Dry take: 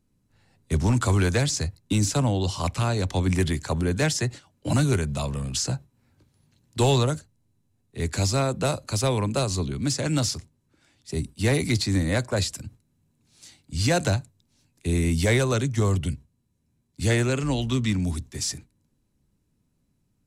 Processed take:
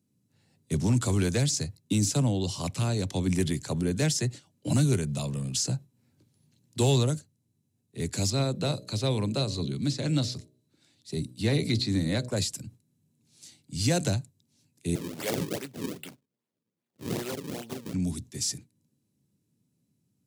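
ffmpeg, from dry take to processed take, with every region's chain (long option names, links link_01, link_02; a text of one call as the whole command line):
ffmpeg -i in.wav -filter_complex "[0:a]asettb=1/sr,asplit=3[link_01][link_02][link_03];[link_01]atrim=end=8.304[link_04];[link_02]atrim=start=8.3:end=12.29,asetpts=PTS-STARTPTS,afade=type=in:duration=0.004:curve=qsin,afade=type=out:start_time=3.986:duration=0.004:curve=qsin,acrossover=split=4100[link_05][link_06];[link_06]acompressor=threshold=-43dB:ratio=4:attack=1:release=60[link_07];[link_05][link_07]amix=inputs=2:normalize=0,equalizer=frequency=4000:width=5.5:gain=9,bandreject=frequency=62.27:width_type=h:width=4,bandreject=frequency=124.54:width_type=h:width=4,bandreject=frequency=186.81:width_type=h:width=4,bandreject=frequency=249.08:width_type=h:width=4,bandreject=frequency=311.35:width_type=h:width=4,bandreject=frequency=373.62:width_type=h:width=4,bandreject=frequency=435.89:width_type=h:width=4,bandreject=frequency=498.16:width_type=h:width=4,bandreject=frequency=560.43:width_type=h:width=4,bandreject=frequency=622.7:width_type=h:width=4[link_08];[link_03]atrim=start=12.286[link_09];[link_04][link_08]acrossfade=duration=0.004:curve1=hsin:curve2=qsin[link_10];[link_10][link_09]acrossfade=duration=0.004:curve1=qsin:curve2=hsin,asettb=1/sr,asplit=3[link_11][link_12][link_13];[link_11]atrim=end=14.954[link_14];[link_12]atrim=start=14.95:end=17.94,asetpts=PTS-STARTPTS,afade=type=in:duration=0.004:curve=qsin,afade=type=out:start_time=2.986:duration=0.004:curve=qsin,highpass=510,acrusher=samples=36:mix=1:aa=0.000001:lfo=1:lforange=57.6:lforate=2.5[link_15];[link_13]atrim=start=17.936[link_16];[link_14][link_15]acrossfade=duration=0.004:curve1=hsin:curve2=qsin[link_17];[link_17][link_16]acrossfade=duration=0.004:curve1=qsin:curve2=hsin,highpass=frequency=110:width=0.5412,highpass=frequency=110:width=1.3066,equalizer=frequency=1200:width=0.55:gain=-10" out.wav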